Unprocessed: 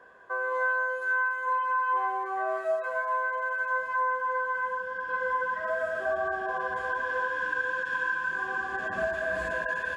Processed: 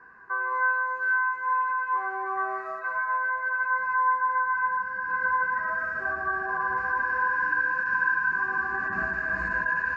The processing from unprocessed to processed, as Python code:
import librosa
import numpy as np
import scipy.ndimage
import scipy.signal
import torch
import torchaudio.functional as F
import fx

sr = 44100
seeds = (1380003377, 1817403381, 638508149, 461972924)

y = scipy.signal.sosfilt(scipy.signal.butter(4, 5000.0, 'lowpass', fs=sr, output='sos'), x)
y = fx.fixed_phaser(y, sr, hz=1400.0, stages=4)
y = fx.rev_gated(y, sr, seeds[0], gate_ms=170, shape='flat', drr_db=7.0)
y = F.gain(torch.from_numpy(y), 4.5).numpy()